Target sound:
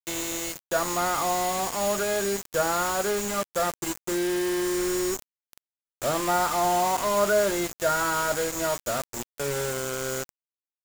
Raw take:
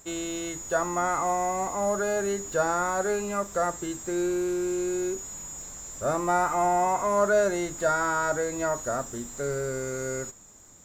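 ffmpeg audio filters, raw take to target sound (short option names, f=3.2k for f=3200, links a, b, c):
-filter_complex "[0:a]asettb=1/sr,asplit=3[a][b][c];[a]atrim=end=4.744[d];[b]atrim=start=4.74:end=5.3,asetpts=PTS-STARTPTS,afade=t=in:d=0.004:c=qsin,afade=t=out:st=0.556:d=0.004:c=qsin,lowshelf=f=84:g=7.5[e];[c]atrim=start=5.296[f];[d][e]acrossfade=d=0.004:c1=hsin:c2=qsin[g];[g][f]acrossfade=d=0.004:c1=qsin:c2=hsin,acrusher=bits=4:mix=0:aa=0.000001"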